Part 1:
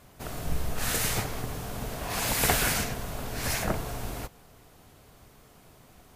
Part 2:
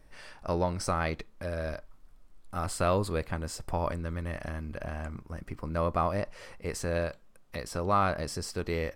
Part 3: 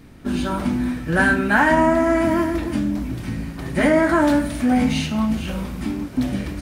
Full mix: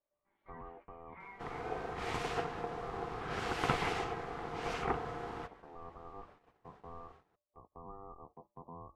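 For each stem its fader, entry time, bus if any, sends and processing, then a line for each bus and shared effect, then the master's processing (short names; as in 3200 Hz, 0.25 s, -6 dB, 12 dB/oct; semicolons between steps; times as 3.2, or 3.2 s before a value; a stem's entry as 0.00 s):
0.0 dB, 1.20 s, no bus, no send, HPF 91 Hz 24 dB/oct
-12.0 dB, 0.00 s, bus A, no send, elliptic low-pass 610 Hz, stop band 40 dB; de-hum 127.8 Hz, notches 38
-13.5 dB, 0.00 s, bus A, no send, LPF 1400 Hz 12 dB/oct; chorus voices 4, 0.24 Hz, delay 14 ms, depth 4.5 ms; HPF 1100 Hz 12 dB/oct
bus A: 0.0 dB, low shelf 83 Hz -9 dB; limiter -37 dBFS, peak gain reduction 10 dB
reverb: off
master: tape spacing loss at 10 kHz 28 dB; ring modulator 590 Hz; gate -57 dBFS, range -15 dB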